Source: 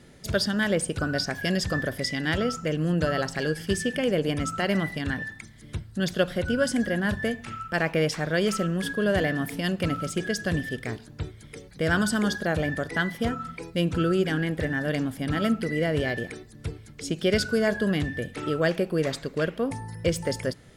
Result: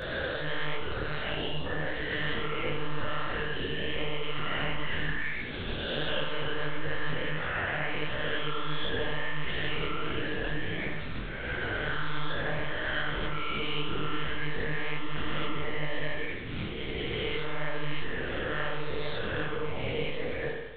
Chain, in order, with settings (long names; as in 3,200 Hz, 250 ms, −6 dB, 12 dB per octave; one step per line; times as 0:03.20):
peak hold with a rise ahead of every peak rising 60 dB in 1.79 s
downward compressor, threshold −25 dBFS, peak gain reduction 10 dB
time-frequency box erased 0:01.31–0:01.65, 1,200–2,500 Hz
one-pitch LPC vocoder at 8 kHz 150 Hz
high-shelf EQ 2,300 Hz +10.5 dB
spring reverb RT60 1.1 s, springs 52 ms, chirp 50 ms, DRR 1.5 dB
micro pitch shift up and down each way 51 cents
level −3.5 dB